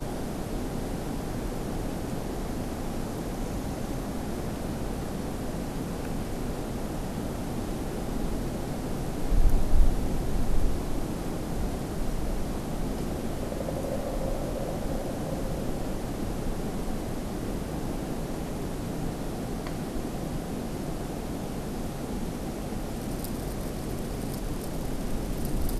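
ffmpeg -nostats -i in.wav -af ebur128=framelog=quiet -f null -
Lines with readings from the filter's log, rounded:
Integrated loudness:
  I:         -33.2 LUFS
  Threshold: -43.1 LUFS
Loudness range:
  LRA:         3.4 LU
  Threshold: -53.1 LUFS
  LRA low:   -34.2 LUFS
  LRA high:  -30.8 LUFS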